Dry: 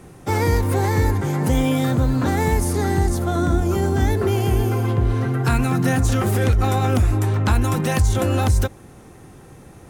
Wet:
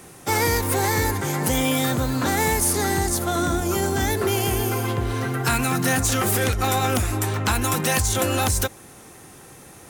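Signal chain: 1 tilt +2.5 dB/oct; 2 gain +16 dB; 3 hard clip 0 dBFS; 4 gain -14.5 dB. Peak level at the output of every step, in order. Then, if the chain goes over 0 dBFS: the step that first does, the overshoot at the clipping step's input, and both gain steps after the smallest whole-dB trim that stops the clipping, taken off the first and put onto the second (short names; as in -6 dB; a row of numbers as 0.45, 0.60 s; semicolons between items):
-6.5, +9.5, 0.0, -14.5 dBFS; step 2, 9.5 dB; step 2 +6 dB, step 4 -4.5 dB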